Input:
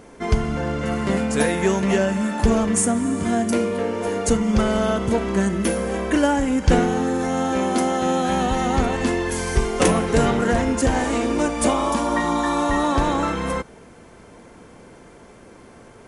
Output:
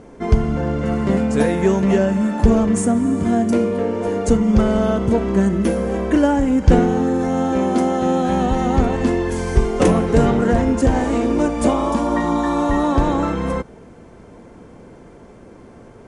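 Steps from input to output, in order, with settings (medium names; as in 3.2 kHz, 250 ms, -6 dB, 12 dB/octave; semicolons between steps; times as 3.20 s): low-pass 9.6 kHz 24 dB/octave; tilt shelf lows +5 dB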